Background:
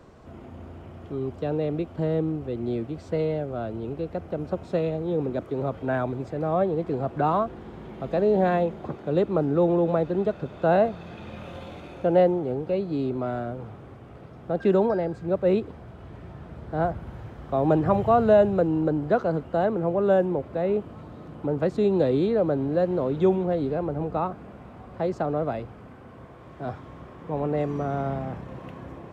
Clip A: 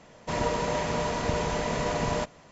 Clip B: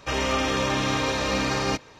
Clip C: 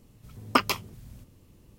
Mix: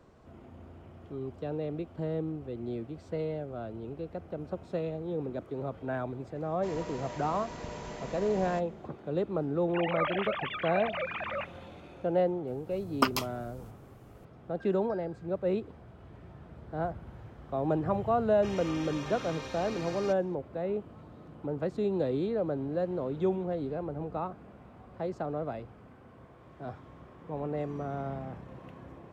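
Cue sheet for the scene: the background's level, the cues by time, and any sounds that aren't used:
background -8 dB
6.35 add A -13.5 dB
9.68 add B -10 dB + sine-wave speech
12.47 add C -3.5 dB + bell 2300 Hz -4.5 dB
18.36 add B -16.5 dB

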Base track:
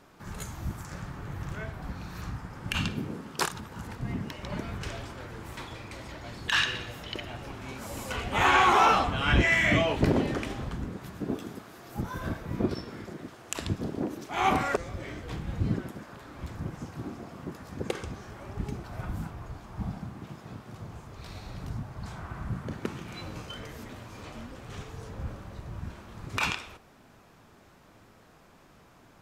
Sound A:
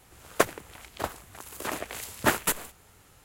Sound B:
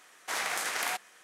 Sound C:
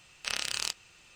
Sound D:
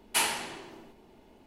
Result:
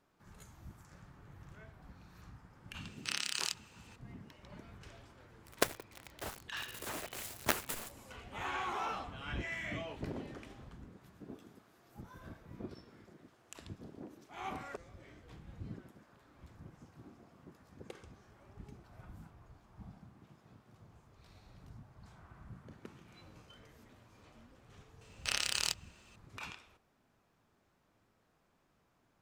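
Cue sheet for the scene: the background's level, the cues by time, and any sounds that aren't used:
base track -17.5 dB
2.81 add C -4 dB + HPF 980 Hz
5.22 add A -14 dB + companded quantiser 2-bit
25.01 add C -4 dB + sample leveller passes 1
not used: B, D

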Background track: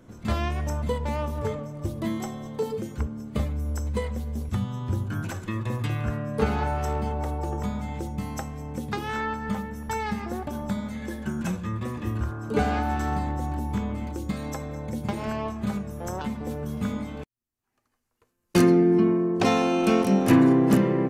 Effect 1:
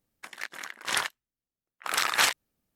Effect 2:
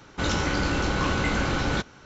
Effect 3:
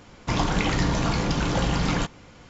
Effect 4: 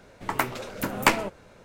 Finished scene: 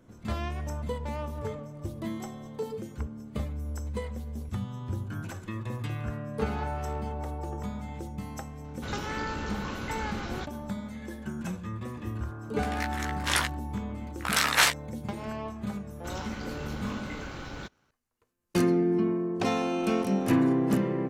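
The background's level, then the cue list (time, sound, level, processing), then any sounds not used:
background track -6 dB
8.64 add 2 -11.5 dB
12.39 add 1 + doubler 16 ms -4 dB
15.86 add 2 -13.5 dB + G.711 law mismatch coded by A
not used: 3, 4

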